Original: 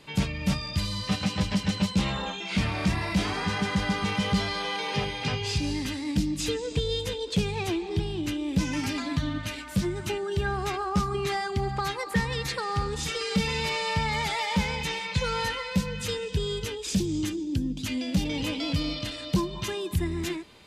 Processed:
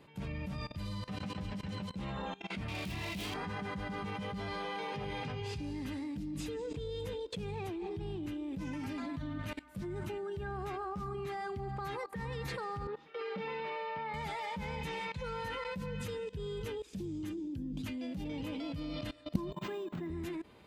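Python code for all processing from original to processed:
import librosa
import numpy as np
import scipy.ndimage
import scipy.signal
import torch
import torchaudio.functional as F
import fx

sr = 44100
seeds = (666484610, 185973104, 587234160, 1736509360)

y = fx.chain(x, sr, fx.self_delay(depth_ms=0.16),
    fx.high_shelf_res(hz=2100.0, db=10.5, q=1.5), at=(2.68, 3.34))
y = fx.chain(y, sr, fx.highpass(hz=400.0, slope=12),
    fx.air_absorb(metres=320.0), at=(12.87, 14.14))
y = fx.chain(y, sr, fx.highpass(hz=160.0, slope=24),
    fx.resample_linear(factor=4), at=(19.52, 20.1))
y = fx.highpass(y, sr, hz=45.0, slope=6)
y = fx.peak_eq(y, sr, hz=5900.0, db=-13.0, octaves=2.5)
y = fx.level_steps(y, sr, step_db=20)
y = y * 10.0 ** (1.0 / 20.0)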